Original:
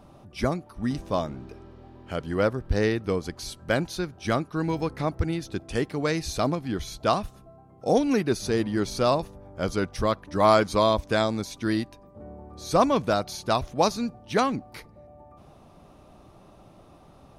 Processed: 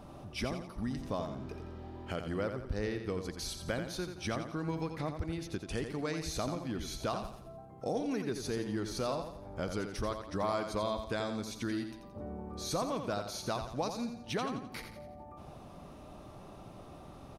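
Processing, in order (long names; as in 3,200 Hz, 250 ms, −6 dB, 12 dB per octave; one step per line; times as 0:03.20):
downward compressor 3 to 1, threshold −38 dBFS, peak gain reduction 17.5 dB
on a send: repeating echo 86 ms, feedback 43%, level −7.5 dB
on the sum: level +1 dB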